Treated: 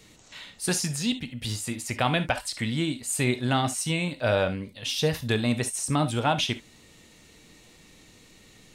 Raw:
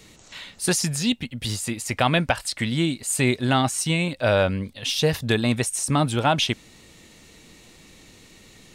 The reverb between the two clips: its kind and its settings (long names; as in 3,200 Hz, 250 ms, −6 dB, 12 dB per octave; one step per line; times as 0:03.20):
reverb whose tail is shaped and stops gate 90 ms flat, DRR 9.5 dB
level −4.5 dB